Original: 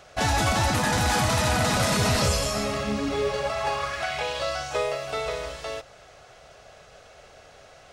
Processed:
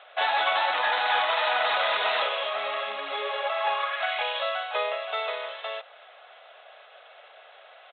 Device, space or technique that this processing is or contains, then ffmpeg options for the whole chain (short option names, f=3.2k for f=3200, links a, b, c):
musical greeting card: -af "aresample=8000,aresample=44100,highpass=f=600:w=0.5412,highpass=f=600:w=1.3066,equalizer=f=3.8k:t=o:w=0.48:g=5,volume=1.5dB"